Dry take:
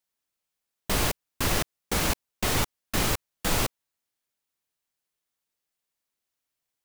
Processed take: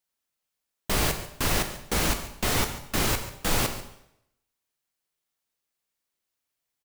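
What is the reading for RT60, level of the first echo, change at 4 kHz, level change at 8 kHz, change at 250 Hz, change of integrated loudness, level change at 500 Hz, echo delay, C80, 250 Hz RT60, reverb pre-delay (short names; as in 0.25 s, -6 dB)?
0.80 s, -16.5 dB, +1.0 dB, +1.0 dB, +0.5 dB, +1.0 dB, +1.0 dB, 0.14 s, 11.0 dB, 0.75 s, 6 ms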